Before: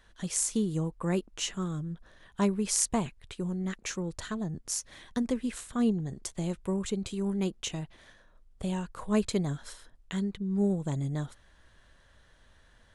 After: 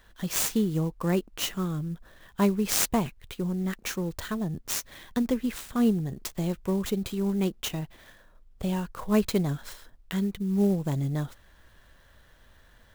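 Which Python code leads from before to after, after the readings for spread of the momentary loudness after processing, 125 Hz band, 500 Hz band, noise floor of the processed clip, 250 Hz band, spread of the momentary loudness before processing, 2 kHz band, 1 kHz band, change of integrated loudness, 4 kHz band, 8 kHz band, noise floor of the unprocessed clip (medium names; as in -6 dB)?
10 LU, +3.5 dB, +3.5 dB, -58 dBFS, +3.5 dB, 10 LU, +4.5 dB, +4.0 dB, +3.5 dB, +3.5 dB, -0.5 dB, -61 dBFS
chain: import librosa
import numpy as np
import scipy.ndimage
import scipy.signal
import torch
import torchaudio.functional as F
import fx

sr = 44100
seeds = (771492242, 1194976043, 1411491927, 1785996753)

y = fx.clock_jitter(x, sr, seeds[0], jitter_ms=0.024)
y = y * librosa.db_to_amplitude(3.5)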